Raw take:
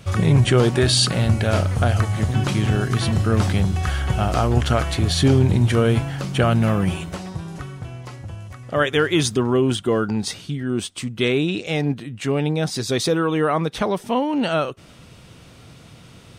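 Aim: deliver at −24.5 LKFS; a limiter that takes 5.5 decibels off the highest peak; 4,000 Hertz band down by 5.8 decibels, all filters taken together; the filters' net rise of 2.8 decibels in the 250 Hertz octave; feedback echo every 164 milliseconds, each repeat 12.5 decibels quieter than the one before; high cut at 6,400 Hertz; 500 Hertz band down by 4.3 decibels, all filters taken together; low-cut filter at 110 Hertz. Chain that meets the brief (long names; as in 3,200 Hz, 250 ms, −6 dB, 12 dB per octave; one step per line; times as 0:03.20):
high-pass filter 110 Hz
low-pass filter 6,400 Hz
parametric band 250 Hz +6 dB
parametric band 500 Hz −8 dB
parametric band 4,000 Hz −6.5 dB
brickwall limiter −10.5 dBFS
repeating echo 164 ms, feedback 24%, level −12.5 dB
level −2.5 dB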